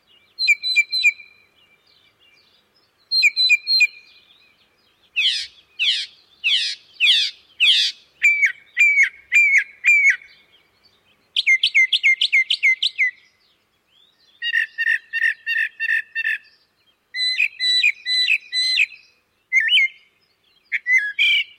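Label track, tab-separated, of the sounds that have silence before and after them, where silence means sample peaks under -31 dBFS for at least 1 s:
3.120000	3.890000	sound
5.160000	10.220000	sound
11.360000	13.100000	sound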